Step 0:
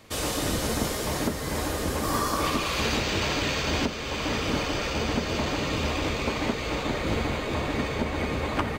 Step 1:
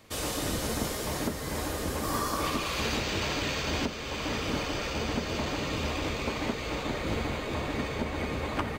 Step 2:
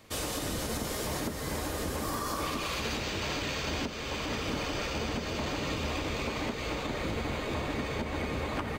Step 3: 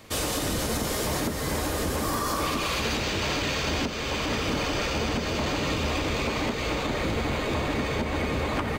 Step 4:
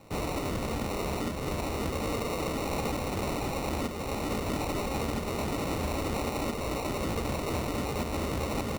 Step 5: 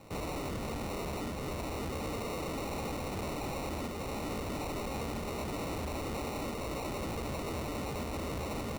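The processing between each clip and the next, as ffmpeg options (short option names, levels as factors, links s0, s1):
-af "highshelf=f=12000:g=3,volume=0.631"
-af "alimiter=limit=0.0708:level=0:latency=1:release=111"
-af "asoftclip=type=tanh:threshold=0.0562,volume=2.24"
-af "acrusher=samples=27:mix=1:aa=0.000001,volume=0.631"
-af "asoftclip=type=tanh:threshold=0.02"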